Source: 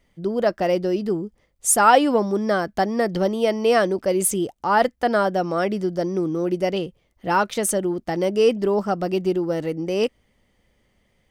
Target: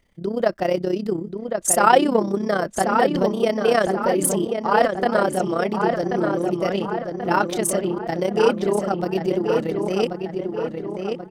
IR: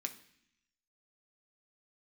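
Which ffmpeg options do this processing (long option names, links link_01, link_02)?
-filter_complex "[0:a]tremolo=f=32:d=0.75,asplit=2[link_01][link_02];[link_02]adelay=1084,lowpass=frequency=3100:poles=1,volume=-5dB,asplit=2[link_03][link_04];[link_04]adelay=1084,lowpass=frequency=3100:poles=1,volume=0.53,asplit=2[link_05][link_06];[link_06]adelay=1084,lowpass=frequency=3100:poles=1,volume=0.53,asplit=2[link_07][link_08];[link_08]adelay=1084,lowpass=frequency=3100:poles=1,volume=0.53,asplit=2[link_09][link_10];[link_10]adelay=1084,lowpass=frequency=3100:poles=1,volume=0.53,asplit=2[link_11][link_12];[link_12]adelay=1084,lowpass=frequency=3100:poles=1,volume=0.53,asplit=2[link_13][link_14];[link_14]adelay=1084,lowpass=frequency=3100:poles=1,volume=0.53[link_15];[link_03][link_05][link_07][link_09][link_11][link_13][link_15]amix=inputs=7:normalize=0[link_16];[link_01][link_16]amix=inputs=2:normalize=0,volume=2.5dB"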